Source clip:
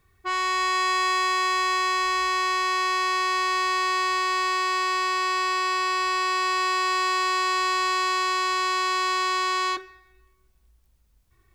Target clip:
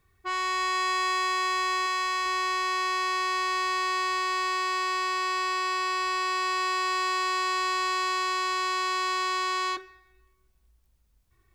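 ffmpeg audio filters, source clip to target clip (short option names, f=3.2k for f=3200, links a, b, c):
-filter_complex "[0:a]asettb=1/sr,asplit=3[a][b][c];[a]atrim=end=1.864[d];[b]atrim=start=1.86:end=2.26,asetpts=PTS-STARTPTS,afade=t=in:d=0.004:c=qsin,afade=t=out:st=0.396:d=0.004:c=qsin,equalizer=f=120:w=0.63:g=-14[e];[c]atrim=start=2.256[f];[d][e]acrossfade=d=0.004:c1=hsin:c2=qsin[g];[g][f]acrossfade=d=0.004:c1=qsin:c2=hsin,volume=-3.5dB"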